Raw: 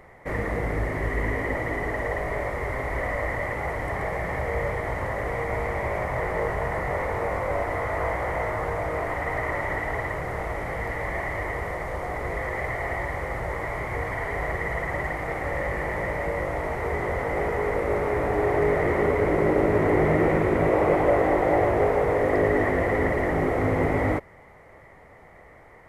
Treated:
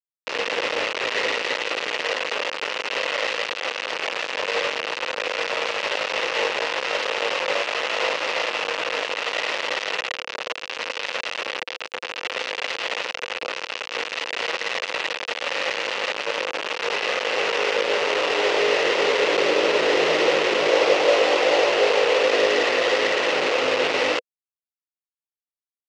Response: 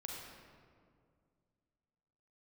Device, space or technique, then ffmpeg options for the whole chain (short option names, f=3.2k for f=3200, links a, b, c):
hand-held game console: -filter_complex "[0:a]asettb=1/sr,asplit=3[a][b][c];[a]atrim=end=16.124[d];[b]atrim=start=16.12:end=16.71,asetpts=PTS-STARTPTS,afade=t=in:d=0.004:c=qsin,afade=t=out:st=0.586:d=0.004:c=qsin,equalizer=f=3.3k:t=o:w=1.5:g=-6[e];[c]atrim=start=16.706[f];[d][e]acrossfade=d=0.004:c1=hsin:c2=qsin[g];[g][f]acrossfade=d=0.004:c1=qsin:c2=hsin,acrusher=bits=3:mix=0:aa=0.000001,highpass=470,equalizer=f=500:t=q:w=4:g=8,equalizer=f=710:t=q:w=4:g=-4,equalizer=f=2.7k:t=q:w=4:g=8,lowpass=f=5.6k:w=0.5412,lowpass=f=5.6k:w=1.3066,volume=1.5dB"